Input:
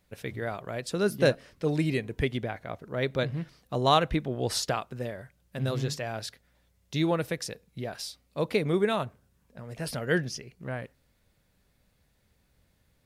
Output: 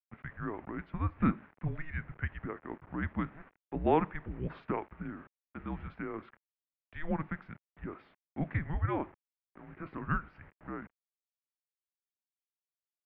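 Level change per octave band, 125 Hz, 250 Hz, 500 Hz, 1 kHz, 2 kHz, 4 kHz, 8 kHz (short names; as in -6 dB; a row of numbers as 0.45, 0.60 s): -5.5 dB, -4.5 dB, -10.5 dB, -5.5 dB, -7.5 dB, -27.0 dB, under -40 dB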